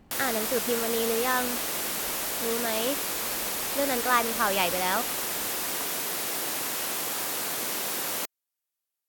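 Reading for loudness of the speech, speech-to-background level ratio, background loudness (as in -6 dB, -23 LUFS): -29.0 LUFS, -1.0 dB, -28.0 LUFS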